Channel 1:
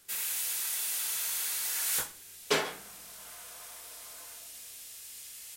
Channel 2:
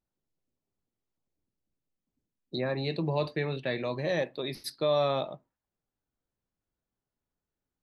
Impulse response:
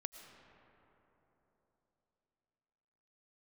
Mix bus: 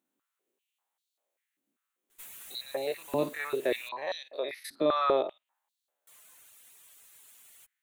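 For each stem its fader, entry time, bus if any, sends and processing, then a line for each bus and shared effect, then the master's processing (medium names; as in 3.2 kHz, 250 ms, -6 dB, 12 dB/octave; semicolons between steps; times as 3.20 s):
-15.0 dB, 2.10 s, muted 3.89–6.07 s, no send, comb filter that takes the minimum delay 9.4 ms; reverb removal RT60 0.65 s
0.0 dB, 0.00 s, no send, spectrogram pixelated in time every 50 ms; step-sequenced high-pass 5.1 Hz 260–4200 Hz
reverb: none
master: peaking EQ 5 kHz -12 dB 0.48 oct; tape noise reduction on one side only encoder only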